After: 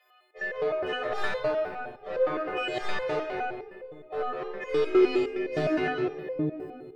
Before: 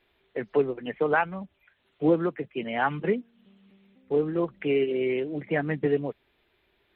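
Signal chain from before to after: partials quantised in pitch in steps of 3 st; high-pass 49 Hz; tilt EQ +1.5 dB/octave; in parallel at -3.5 dB: one-sided clip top -28.5 dBFS; on the sum: high-pass sweep 570 Hz -> 73 Hz, 4.60–6.01 s; overdrive pedal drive 20 dB, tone 2.5 kHz, clips at -2.5 dBFS; on a send: band-passed feedback delay 223 ms, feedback 65%, band-pass 380 Hz, level -7 dB; on the sum: simulated room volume 3700 m³, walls mixed, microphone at 6.3 m; resonator arpeggio 9.7 Hz 94–510 Hz; trim -8 dB

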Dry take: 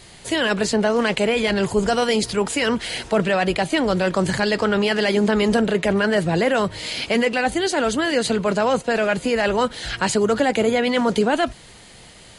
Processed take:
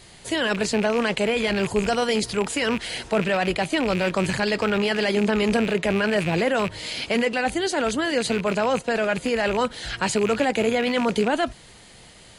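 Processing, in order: rattle on loud lows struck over -25 dBFS, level -16 dBFS; trim -3 dB

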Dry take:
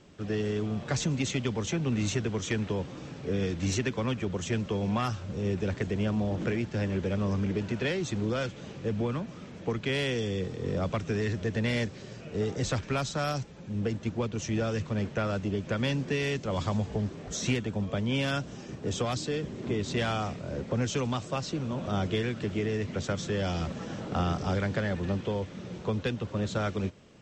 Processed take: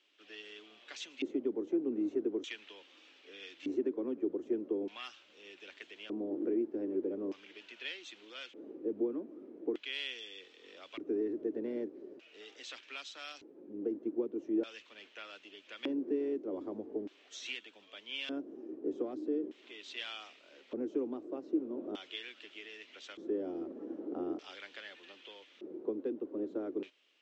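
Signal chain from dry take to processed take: LFO band-pass square 0.41 Hz 340–3000 Hz; resonant low shelf 210 Hz -12.5 dB, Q 3; trim -3 dB

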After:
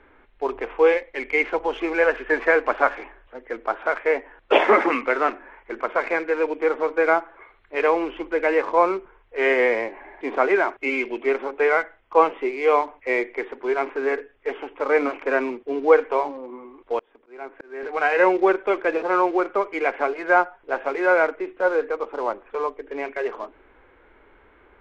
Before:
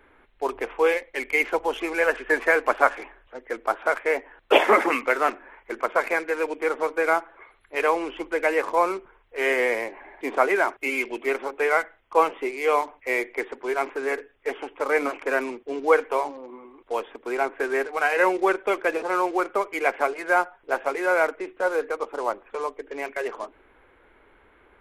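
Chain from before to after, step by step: harmonic-percussive split harmonic +5 dB; 16.99–17.83 s: slow attack 753 ms; distance through air 150 m

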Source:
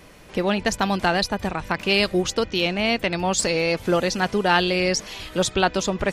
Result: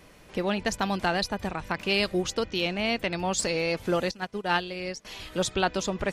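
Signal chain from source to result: 4.11–5.05 s: upward expansion 2.5:1, over -29 dBFS; trim -5.5 dB

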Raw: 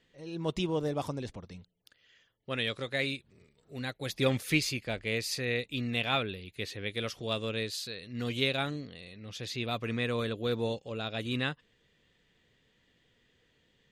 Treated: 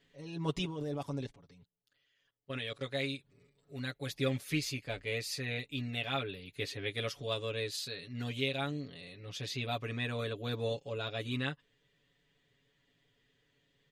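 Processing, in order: 0.65–2.81 s: level held to a coarse grid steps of 19 dB; comb 7.1 ms, depth 90%; gain riding within 3 dB 0.5 s; trim -6 dB

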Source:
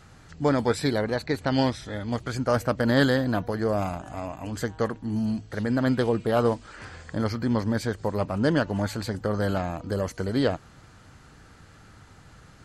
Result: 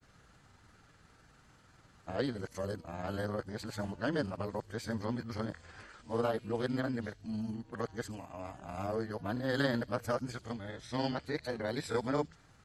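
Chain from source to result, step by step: reverse the whole clip; bass shelf 360 Hz -3 dB; feedback echo behind a high-pass 82 ms, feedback 36%, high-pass 4 kHz, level -13.5 dB; granulator 100 ms, spray 18 ms, pitch spread up and down by 0 st; trim -8 dB

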